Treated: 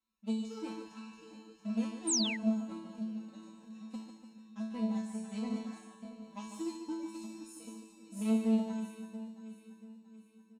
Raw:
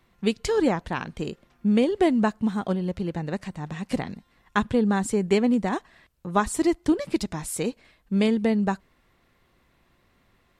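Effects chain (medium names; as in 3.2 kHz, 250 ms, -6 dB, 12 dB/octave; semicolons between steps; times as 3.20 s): backward echo that repeats 341 ms, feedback 69%, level -8 dB; comb 3.8 ms, depth 82%; harmonic-percussive split percussive -12 dB; Chebyshev shaper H 3 -22 dB, 7 -25 dB, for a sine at -6.5 dBFS; high-pass 59 Hz 12 dB/octave; chord resonator A3 fifth, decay 0.62 s; delay 147 ms -8.5 dB; painted sound fall, 2.07–2.37 s, 1.8–9.5 kHz -43 dBFS; fifteen-band graphic EQ 160 Hz -3 dB, 400 Hz -7 dB, 1.6 kHz -9 dB, 6.3 kHz +7 dB; trim +7.5 dB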